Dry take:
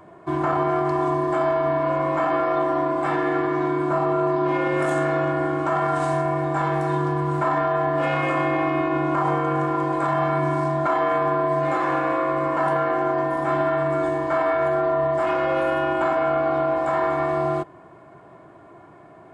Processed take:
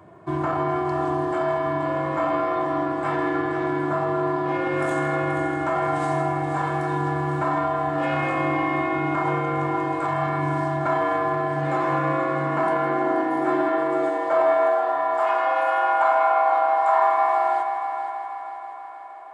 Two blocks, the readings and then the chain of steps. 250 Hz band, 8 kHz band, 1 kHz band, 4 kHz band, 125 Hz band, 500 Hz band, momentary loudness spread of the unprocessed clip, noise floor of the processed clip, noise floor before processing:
-1.5 dB, no reading, +1.5 dB, -1.5 dB, -1.5 dB, -2.0 dB, 2 LU, -35 dBFS, -47 dBFS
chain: high-pass sweep 91 Hz -> 840 Hz, 11.36–15.11 s; multi-head delay 160 ms, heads first and third, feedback 65%, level -10 dB; trim -2.5 dB

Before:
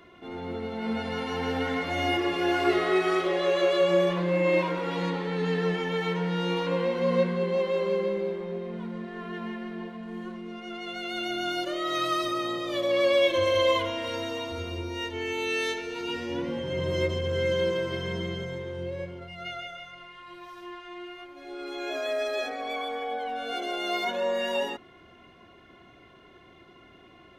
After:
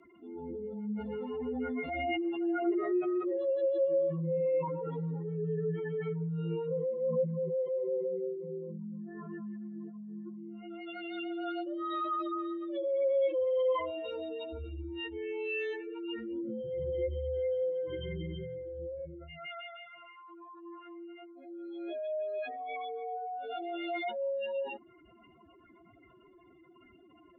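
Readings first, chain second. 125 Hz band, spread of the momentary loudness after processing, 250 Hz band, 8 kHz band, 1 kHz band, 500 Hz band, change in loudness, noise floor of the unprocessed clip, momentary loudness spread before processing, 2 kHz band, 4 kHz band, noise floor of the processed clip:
-5.5 dB, 15 LU, -5.5 dB, under -30 dB, -8.5 dB, -5.5 dB, -6.5 dB, -54 dBFS, 15 LU, -12.5 dB, -16.5 dB, -60 dBFS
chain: spectral contrast enhancement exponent 3; frequency shift -13 Hz; trim -5.5 dB

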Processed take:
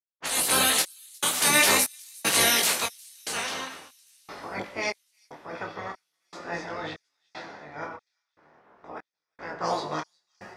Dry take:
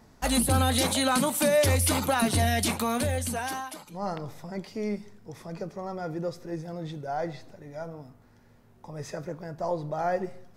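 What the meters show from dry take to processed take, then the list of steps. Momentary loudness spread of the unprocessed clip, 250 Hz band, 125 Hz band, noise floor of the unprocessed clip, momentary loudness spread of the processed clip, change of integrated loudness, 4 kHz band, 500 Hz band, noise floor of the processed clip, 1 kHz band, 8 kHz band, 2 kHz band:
17 LU, -8.5 dB, -14.5 dB, -57 dBFS, 22 LU, +3.5 dB, +6.0 dB, -5.5 dB, -85 dBFS, -0.5 dB, +6.0 dB, +6.5 dB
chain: spectral peaks clipped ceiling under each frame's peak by 26 dB; level-controlled noise filter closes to 1.1 kHz, open at -23 dBFS; high-pass 310 Hz 6 dB/octave; spectral replace 5.55–6.09 s, 2.6–6.3 kHz after; level rider gain up to 7 dB; gated-style reverb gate 420 ms falling, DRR 8.5 dB; trance gate "..xxxxxx.." 147 bpm -60 dB; feedback echo behind a high-pass 359 ms, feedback 62%, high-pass 5 kHz, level -23 dB; detune thickener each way 15 cents

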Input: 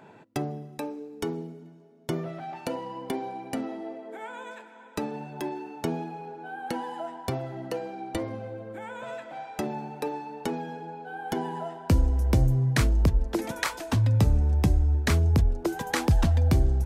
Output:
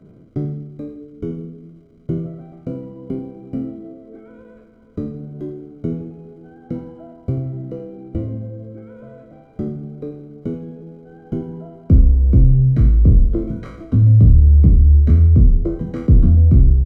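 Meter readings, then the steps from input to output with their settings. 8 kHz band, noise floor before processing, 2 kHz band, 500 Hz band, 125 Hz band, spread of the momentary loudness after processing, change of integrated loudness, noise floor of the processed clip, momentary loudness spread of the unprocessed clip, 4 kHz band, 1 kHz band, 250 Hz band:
under -20 dB, -50 dBFS, under -10 dB, +2.0 dB, +11.5 dB, 21 LU, +13.0 dB, -47 dBFS, 16 LU, under -15 dB, -13.0 dB, +8.5 dB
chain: spectral sustain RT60 0.59 s; crackle 540 per s -37 dBFS; bass shelf 260 Hz +12 dB; in parallel at -0.5 dB: peak limiter -10 dBFS, peak gain reduction 10 dB; on the sum: boxcar filter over 50 samples; on a send: feedback delay 83 ms, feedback 48%, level -13 dB; on the sum: trim -4 dB

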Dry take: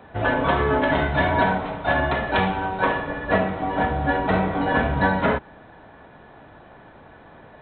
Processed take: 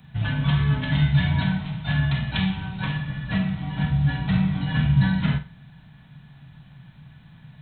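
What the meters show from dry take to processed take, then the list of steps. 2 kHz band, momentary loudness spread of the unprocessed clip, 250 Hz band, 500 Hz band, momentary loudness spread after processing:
-7.5 dB, 4 LU, +1.0 dB, -20.0 dB, 8 LU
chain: FFT filter 100 Hz 0 dB, 140 Hz +14 dB, 360 Hz -21 dB, 520 Hz -23 dB, 850 Hz -15 dB, 1.3 kHz -13 dB, 3 kHz +1 dB, 4.9 kHz +4 dB, 7.3 kHz +10 dB; flutter echo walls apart 8 m, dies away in 0.27 s

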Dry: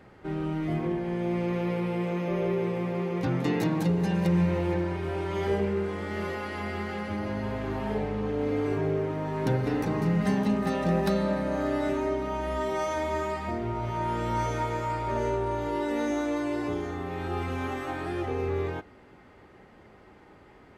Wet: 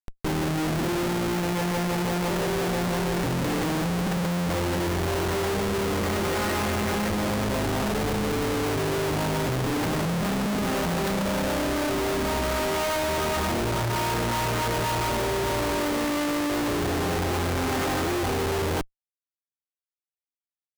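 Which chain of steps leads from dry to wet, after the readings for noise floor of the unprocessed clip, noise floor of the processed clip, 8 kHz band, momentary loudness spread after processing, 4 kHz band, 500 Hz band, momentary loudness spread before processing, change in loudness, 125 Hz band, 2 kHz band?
-54 dBFS, under -85 dBFS, +16.5 dB, 1 LU, +13.0 dB, +2.0 dB, 7 LU, +3.0 dB, +2.0 dB, +7.0 dB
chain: square wave that keeps the level; compression 2:1, threshold -29 dBFS, peak gain reduction 6 dB; Schmitt trigger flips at -42 dBFS; trim +3 dB

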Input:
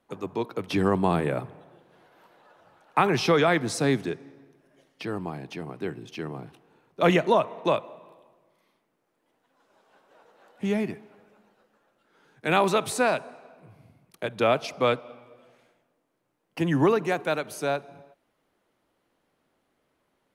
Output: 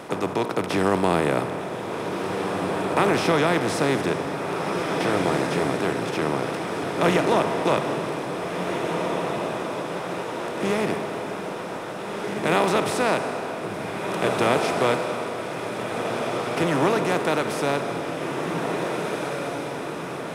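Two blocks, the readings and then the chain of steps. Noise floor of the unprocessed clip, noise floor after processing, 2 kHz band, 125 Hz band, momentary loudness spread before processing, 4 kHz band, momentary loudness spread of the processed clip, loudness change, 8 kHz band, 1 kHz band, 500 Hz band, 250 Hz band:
-74 dBFS, -32 dBFS, +5.0 dB, +3.0 dB, 14 LU, +5.0 dB, 9 LU, +1.5 dB, +5.0 dB, +5.0 dB, +4.5 dB, +4.0 dB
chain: spectral levelling over time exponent 0.4; echo that smears into a reverb 1752 ms, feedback 56%, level -4.5 dB; trim -4.5 dB

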